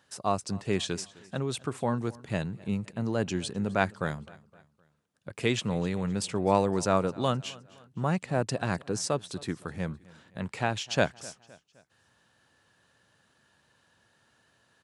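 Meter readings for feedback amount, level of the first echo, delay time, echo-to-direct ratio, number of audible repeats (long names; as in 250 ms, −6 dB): 46%, −22.0 dB, 258 ms, −21.0 dB, 2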